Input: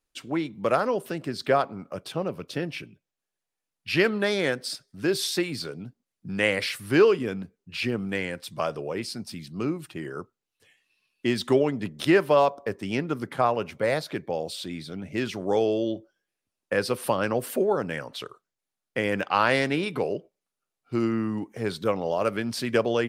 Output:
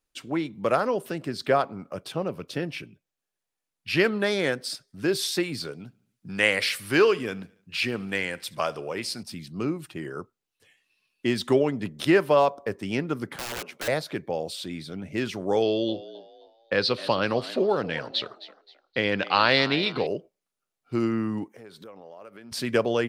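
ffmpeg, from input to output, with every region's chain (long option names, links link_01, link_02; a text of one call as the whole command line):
ffmpeg -i in.wav -filter_complex "[0:a]asettb=1/sr,asplit=3[link_01][link_02][link_03];[link_01]atrim=end=5.734[link_04];[link_02]atrim=start=5.73:end=9.23,asetpts=PTS-STARTPTS,afade=type=in:duration=0.004:curve=qsin,afade=type=out:start_time=3.496:duration=0.004:curve=qsin,tiltshelf=frequency=670:gain=-4,aecho=1:1:71|142|213|284:0.0631|0.0372|0.022|0.013,atrim=end_sample=154350[link_05];[link_03]atrim=start=9.226[link_06];[link_04][link_05]acrossfade=duration=0.004:curve1=hsin:curve2=qsin[link_07];[link_07][link_06]acrossfade=duration=0.004:curve1=qsin:curve2=hsin,asettb=1/sr,asplit=3[link_08][link_09][link_10];[link_08]atrim=end=13.364[link_11];[link_09]atrim=start=13.36:end=13.88,asetpts=PTS-STARTPTS,afade=type=in:duration=0.004:curve=qsin,afade=type=out:start_time=0.516:duration=0.004:curve=qsin,highpass=360,acompressor=threshold=-24dB:ratio=6:attack=3.2:release=140:knee=1:detection=peak,aeval=exprs='(mod(23.7*val(0)+1,2)-1)/23.7':channel_layout=same[link_12];[link_10]atrim=start=13.876[link_13];[link_11][link_12]acrossfade=duration=0.004:curve1=hsin:curve2=qsin[link_14];[link_14][link_13]acrossfade=duration=0.004:curve1=qsin:curve2=hsin,asettb=1/sr,asplit=3[link_15][link_16][link_17];[link_15]atrim=end=15.624[link_18];[link_16]atrim=start=15.62:end=20.07,asetpts=PTS-STARTPTS,afade=type=in:duration=0.004:curve=qsin,afade=type=out:start_time=4.446:duration=0.004:curve=qsin,lowpass=frequency=4100:width_type=q:width=5.2,asplit=4[link_19][link_20][link_21][link_22];[link_20]adelay=263,afreqshift=78,volume=-16.5dB[link_23];[link_21]adelay=526,afreqshift=156,volume=-26.1dB[link_24];[link_22]adelay=789,afreqshift=234,volume=-35.8dB[link_25];[link_19][link_23][link_24][link_25]amix=inputs=4:normalize=0,atrim=end_sample=196245[link_26];[link_17]atrim=start=20.066[link_27];[link_18][link_26]acrossfade=duration=0.004:curve1=hsin:curve2=qsin[link_28];[link_28][link_27]acrossfade=duration=0.004:curve1=qsin:curve2=hsin,asettb=1/sr,asplit=3[link_29][link_30][link_31];[link_29]atrim=end=21.484[link_32];[link_30]atrim=start=21.48:end=22.52,asetpts=PTS-STARTPTS,afade=type=in:duration=0.004:curve=qsin,afade=type=out:start_time=1.036:duration=0.004:curve=qsin,lowpass=frequency=1500:poles=1,aemphasis=mode=production:type=bsi,acompressor=threshold=-43dB:ratio=5:attack=3.2:release=140:knee=1:detection=peak[link_33];[link_31]atrim=start=22.516[link_34];[link_32][link_33]acrossfade=duration=0.004:curve1=hsin:curve2=qsin[link_35];[link_35][link_34]acrossfade=duration=0.004:curve1=qsin:curve2=hsin" out.wav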